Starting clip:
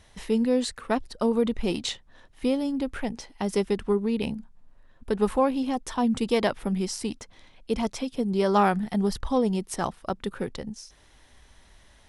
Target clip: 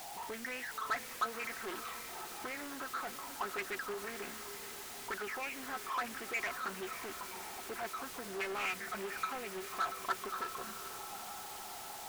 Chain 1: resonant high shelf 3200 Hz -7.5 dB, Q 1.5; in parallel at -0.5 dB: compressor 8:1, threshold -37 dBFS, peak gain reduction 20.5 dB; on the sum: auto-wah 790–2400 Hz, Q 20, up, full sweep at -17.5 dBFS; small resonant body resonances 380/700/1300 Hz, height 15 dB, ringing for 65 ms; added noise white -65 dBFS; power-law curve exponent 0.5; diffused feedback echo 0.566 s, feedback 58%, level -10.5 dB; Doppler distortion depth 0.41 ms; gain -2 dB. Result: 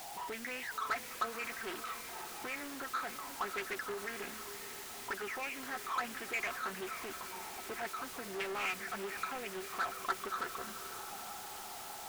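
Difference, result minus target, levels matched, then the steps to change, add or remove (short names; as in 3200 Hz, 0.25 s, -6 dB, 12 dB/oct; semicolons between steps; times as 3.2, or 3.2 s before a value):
compressor: peak gain reduction -7 dB
change: compressor 8:1, threshold -45 dBFS, peak gain reduction 27.5 dB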